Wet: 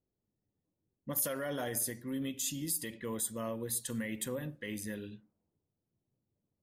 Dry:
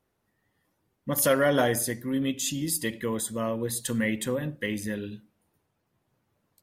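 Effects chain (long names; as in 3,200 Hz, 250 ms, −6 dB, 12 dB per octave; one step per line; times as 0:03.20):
brickwall limiter −20 dBFS, peak gain reduction 8 dB
low-pass that shuts in the quiet parts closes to 420 Hz, open at −28.5 dBFS
high-shelf EQ 8,900 Hz +11.5 dB
level −8.5 dB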